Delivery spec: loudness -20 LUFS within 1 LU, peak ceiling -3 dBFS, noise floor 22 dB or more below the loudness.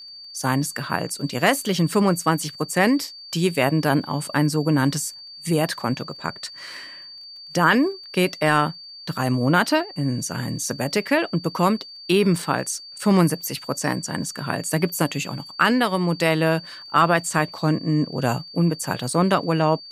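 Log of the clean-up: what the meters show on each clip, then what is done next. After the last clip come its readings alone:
ticks 23/s; steady tone 4600 Hz; tone level -38 dBFS; loudness -22.0 LUFS; peak -4.5 dBFS; loudness target -20.0 LUFS
-> de-click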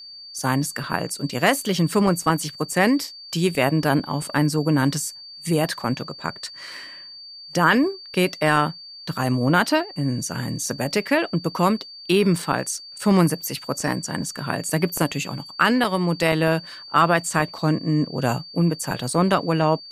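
ticks 0/s; steady tone 4600 Hz; tone level -38 dBFS
-> notch 4600 Hz, Q 30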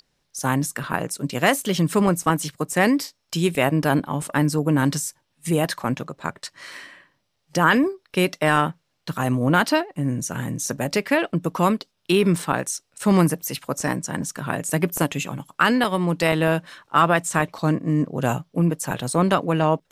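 steady tone none; loudness -22.5 LUFS; peak -4.5 dBFS; loudness target -20.0 LUFS
-> gain +2.5 dB; limiter -3 dBFS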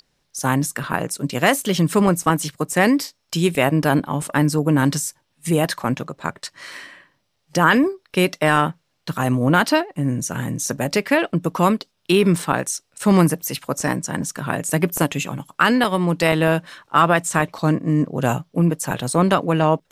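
loudness -20.0 LUFS; peak -3.0 dBFS; noise floor -70 dBFS

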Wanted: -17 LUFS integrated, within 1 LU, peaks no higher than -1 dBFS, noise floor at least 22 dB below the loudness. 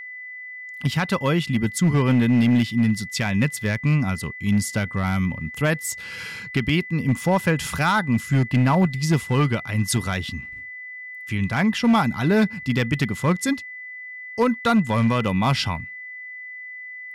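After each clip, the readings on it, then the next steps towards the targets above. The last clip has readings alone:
clipped 0.9%; flat tops at -12.5 dBFS; steady tone 2000 Hz; tone level -34 dBFS; loudness -22.0 LUFS; peak -12.5 dBFS; loudness target -17.0 LUFS
-> clip repair -12.5 dBFS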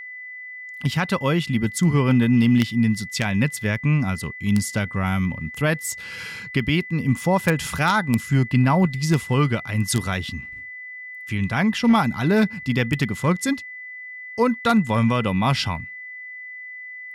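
clipped 0.0%; steady tone 2000 Hz; tone level -34 dBFS
-> notch 2000 Hz, Q 30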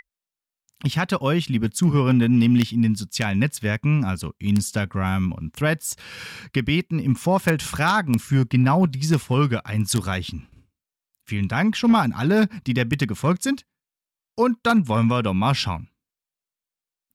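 steady tone none; loudness -21.5 LUFS; peak -3.5 dBFS; loudness target -17.0 LUFS
-> gain +4.5 dB; limiter -1 dBFS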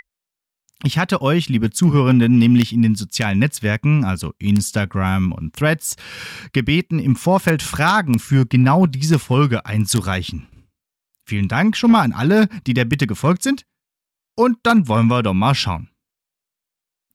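loudness -17.0 LUFS; peak -1.0 dBFS; noise floor -85 dBFS

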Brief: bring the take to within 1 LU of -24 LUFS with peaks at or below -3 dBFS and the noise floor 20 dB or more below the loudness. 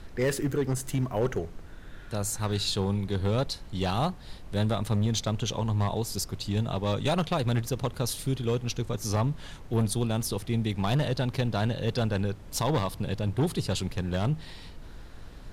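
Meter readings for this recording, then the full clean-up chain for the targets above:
clipped 1.5%; flat tops at -20.0 dBFS; noise floor -45 dBFS; noise floor target -50 dBFS; loudness -29.5 LUFS; peak -20.0 dBFS; loudness target -24.0 LUFS
-> clip repair -20 dBFS; noise print and reduce 6 dB; gain +5.5 dB

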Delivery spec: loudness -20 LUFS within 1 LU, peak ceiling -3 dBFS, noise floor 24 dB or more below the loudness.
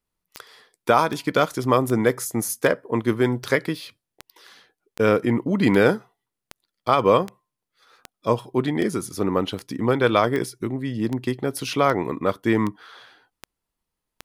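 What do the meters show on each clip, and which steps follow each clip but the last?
clicks 19; loudness -22.5 LUFS; peak -4.0 dBFS; loudness target -20.0 LUFS
-> de-click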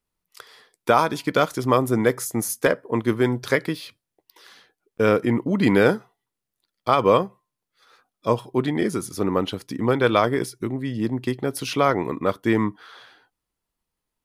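clicks 0; loudness -22.5 LUFS; peak -4.0 dBFS; loudness target -20.0 LUFS
-> gain +2.5 dB; limiter -3 dBFS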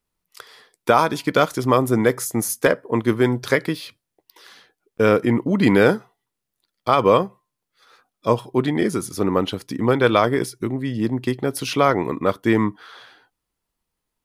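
loudness -20.0 LUFS; peak -3.0 dBFS; noise floor -82 dBFS

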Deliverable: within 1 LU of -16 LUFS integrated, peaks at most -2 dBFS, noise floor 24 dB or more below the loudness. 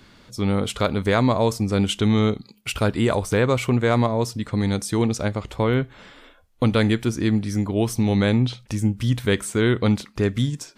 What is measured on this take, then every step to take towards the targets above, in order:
loudness -22.0 LUFS; peak -6.5 dBFS; loudness target -16.0 LUFS
-> gain +6 dB; limiter -2 dBFS

